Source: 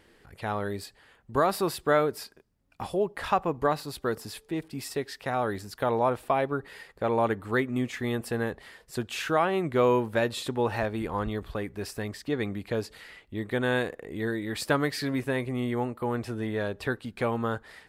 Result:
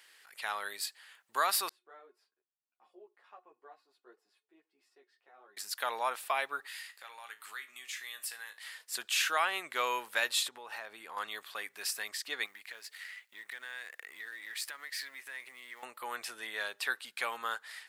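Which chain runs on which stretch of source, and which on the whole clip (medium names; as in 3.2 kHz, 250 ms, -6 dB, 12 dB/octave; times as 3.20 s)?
1.69–5.57 s: band-pass filter 350 Hz, Q 1.8 + feedback comb 360 Hz, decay 0.18 s, mix 70% + three-phase chorus
6.67–8.64 s: tilt shelf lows -7.5 dB, about 900 Hz + compression 3:1, threshold -39 dBFS + feedback comb 54 Hz, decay 0.26 s, mix 70%
10.43–11.17 s: compression, threshold -34 dBFS + tilt shelf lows +4 dB, about 1.3 kHz
12.46–15.83 s: companding laws mixed up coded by A + peaking EQ 1.9 kHz +7.5 dB 0.61 oct + compression, threshold -39 dBFS
whole clip: high-pass 1.4 kHz 12 dB/octave; treble shelf 3.9 kHz +6.5 dB; trim +2 dB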